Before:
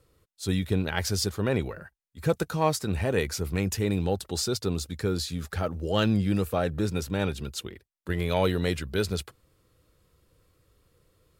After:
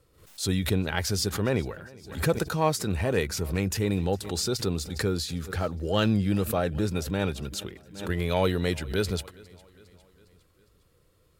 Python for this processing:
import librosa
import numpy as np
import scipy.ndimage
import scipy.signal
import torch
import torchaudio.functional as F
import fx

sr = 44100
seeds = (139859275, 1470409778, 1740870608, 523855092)

y = fx.echo_feedback(x, sr, ms=407, feedback_pct=55, wet_db=-23.5)
y = fx.pre_swell(y, sr, db_per_s=110.0)